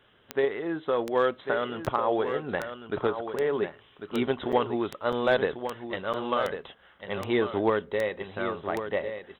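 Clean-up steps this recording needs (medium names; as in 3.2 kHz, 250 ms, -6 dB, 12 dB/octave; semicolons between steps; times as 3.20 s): de-click; interpolate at 1.86/4.52/5.12/6.13 s, 7.1 ms; inverse comb 1097 ms -9 dB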